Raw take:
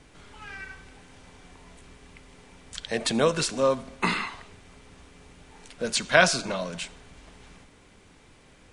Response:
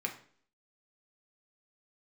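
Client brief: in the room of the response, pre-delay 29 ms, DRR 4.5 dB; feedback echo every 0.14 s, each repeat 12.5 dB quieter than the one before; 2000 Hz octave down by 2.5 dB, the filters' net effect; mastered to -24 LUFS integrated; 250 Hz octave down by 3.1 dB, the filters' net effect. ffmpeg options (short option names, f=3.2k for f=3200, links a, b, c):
-filter_complex "[0:a]equalizer=f=250:t=o:g=-4,equalizer=f=2k:t=o:g=-3.5,aecho=1:1:140|280|420:0.237|0.0569|0.0137,asplit=2[a][b];[1:a]atrim=start_sample=2205,adelay=29[c];[b][c]afir=irnorm=-1:irlink=0,volume=-7.5dB[d];[a][d]amix=inputs=2:normalize=0,volume=2dB"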